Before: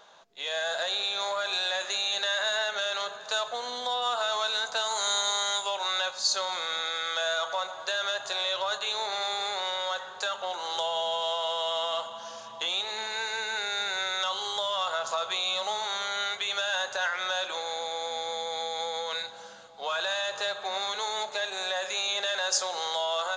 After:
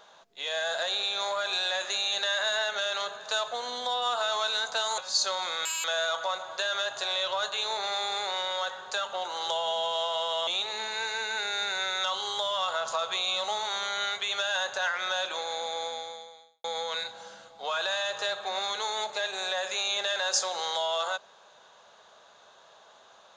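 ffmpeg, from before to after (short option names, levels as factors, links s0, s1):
-filter_complex "[0:a]asplit=6[s0][s1][s2][s3][s4][s5];[s0]atrim=end=4.982[s6];[s1]atrim=start=6.078:end=6.754[s7];[s2]atrim=start=6.75:end=7.13,asetpts=PTS-STARTPTS,asetrate=87318,aresample=44100[s8];[s3]atrim=start=7.126:end=11.762[s9];[s4]atrim=start=12.658:end=18.83,asetpts=PTS-STARTPTS,afade=t=out:st=5.362:d=0.81:c=qua[s10];[s5]atrim=start=18.83,asetpts=PTS-STARTPTS,afade=t=in:d=0.004:c=hsin[s11];[s6][s7]acrossfade=d=0.004:c1=hsin:c2=hsin[s12];[s12][s8]acrossfade=d=0.004:c1=hsin:c2=hsin[s13];[s13][s9]acrossfade=d=0.004:c1=hsin:c2=hsin[s14];[s10][s11]concat=n=2:v=0:a=1[s15];[s14][s15]acrossfade=d=0.004:c1=hsin:c2=hsin"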